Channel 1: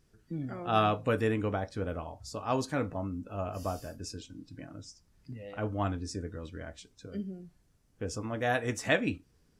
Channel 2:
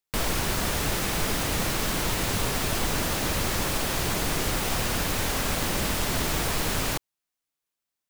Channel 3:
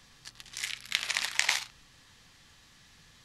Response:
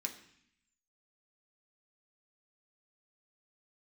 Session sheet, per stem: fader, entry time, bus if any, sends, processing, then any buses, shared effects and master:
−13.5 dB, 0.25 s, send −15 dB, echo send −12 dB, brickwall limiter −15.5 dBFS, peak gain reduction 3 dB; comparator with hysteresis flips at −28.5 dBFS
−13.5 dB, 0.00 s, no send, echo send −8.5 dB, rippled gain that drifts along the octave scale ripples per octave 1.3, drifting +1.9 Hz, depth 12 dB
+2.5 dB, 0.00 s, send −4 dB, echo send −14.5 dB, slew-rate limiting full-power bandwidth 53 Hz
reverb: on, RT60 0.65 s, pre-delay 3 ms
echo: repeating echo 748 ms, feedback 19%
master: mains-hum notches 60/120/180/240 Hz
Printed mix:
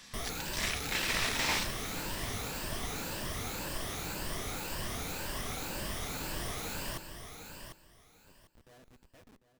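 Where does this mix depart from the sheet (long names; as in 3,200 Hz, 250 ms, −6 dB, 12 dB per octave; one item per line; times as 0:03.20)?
stem 1 −13.5 dB → −23.0 dB
master: missing mains-hum notches 60/120/180/240 Hz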